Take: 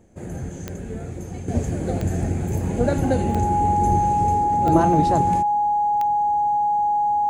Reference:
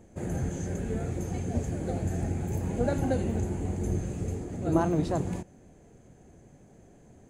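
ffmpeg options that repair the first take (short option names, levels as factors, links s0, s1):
-af "adeclick=t=4,bandreject=f=830:w=30,asetnsamples=n=441:p=0,asendcmd='1.48 volume volume -7dB',volume=1"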